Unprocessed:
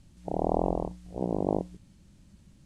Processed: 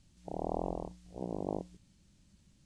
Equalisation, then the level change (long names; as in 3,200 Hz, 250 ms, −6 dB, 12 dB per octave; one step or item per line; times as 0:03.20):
high-frequency loss of the air 75 metres
first-order pre-emphasis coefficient 0.8
+5.0 dB